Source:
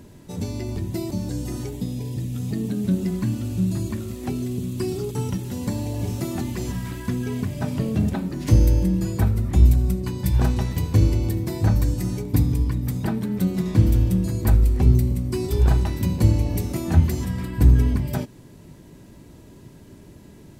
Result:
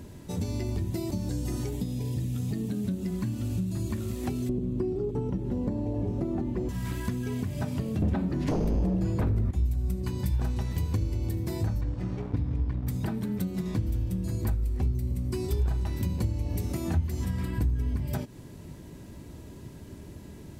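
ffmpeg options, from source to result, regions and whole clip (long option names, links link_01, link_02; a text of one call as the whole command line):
ffmpeg -i in.wav -filter_complex "[0:a]asettb=1/sr,asplit=3[link_01][link_02][link_03];[link_01]atrim=end=4.494[link_04];[link_02]atrim=start=4.49:end=6.69,asetpts=PTS-STARTPTS,afade=type=in:duration=0.004:curve=qsin,afade=type=out:start_time=2.196:duration=0.004:curve=qsin,lowpass=frequency=1200:poles=1,equalizer=frequency=390:width=0.47:gain=11.5,aeval=exprs='val(0)+0.0355*(sin(2*PI*50*n/s)+sin(2*PI*2*50*n/s)/2+sin(2*PI*3*50*n/s)/3+sin(2*PI*4*50*n/s)/4+sin(2*PI*5*50*n/s)/5)':channel_layout=same[link_05];[link_03]atrim=start=6.686[link_06];[link_04][link_05]acrossfade=duration=0.004:curve1=hsin:curve2=qsin[link_07];[link_07][link_06]acrossfade=duration=0.004:curve1=qsin:curve2=hsin,asettb=1/sr,asplit=3[link_08][link_09][link_10];[link_08]atrim=end=8.024[link_11];[link_09]atrim=start=8.02:end=9.51,asetpts=PTS-STARTPTS,afade=type=in:duration=0.004:curve=qsin,afade=type=out:start_time=1.486:duration=0.004:curve=qsin,lowpass=frequency=2100:poles=1,aeval=exprs='0.631*sin(PI/2*4.47*val(0)/0.631)':channel_layout=same[link_12];[link_10]atrim=start=9.506[link_13];[link_11][link_12]acrossfade=duration=0.004:curve1=hsin:curve2=qsin[link_14];[link_14][link_13]acrossfade=duration=0.004:curve1=qsin:curve2=hsin,asettb=1/sr,asplit=3[link_15][link_16][link_17];[link_15]atrim=end=11.814[link_18];[link_16]atrim=start=11.81:end=12.87,asetpts=PTS-STARTPTS,afade=type=in:duration=0.004:curve=qsin,afade=type=out:start_time=1.056:duration=0.004:curve=qsin,lowpass=2800,aeval=exprs='sgn(val(0))*max(abs(val(0))-0.0158,0)':channel_layout=same[link_19];[link_17]atrim=start=12.866[link_20];[link_18][link_19]acrossfade=duration=0.004:curve1=hsin:curve2=qsin[link_21];[link_21][link_20]acrossfade=duration=0.004:curve1=qsin:curve2=hsin,acompressor=threshold=-28dB:ratio=6,equalizer=frequency=73:width_type=o:width=0.6:gain=6.5" out.wav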